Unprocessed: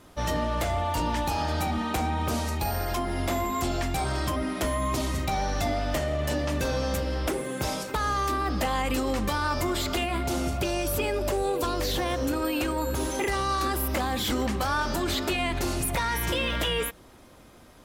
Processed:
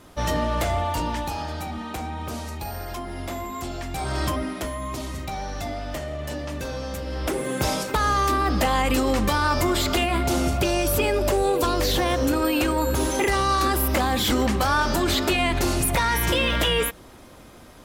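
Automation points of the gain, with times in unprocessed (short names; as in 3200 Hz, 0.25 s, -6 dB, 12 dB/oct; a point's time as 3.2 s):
0.75 s +3.5 dB
1.59 s -4 dB
3.85 s -4 dB
4.24 s +4 dB
4.73 s -3.5 dB
6.98 s -3.5 dB
7.49 s +5.5 dB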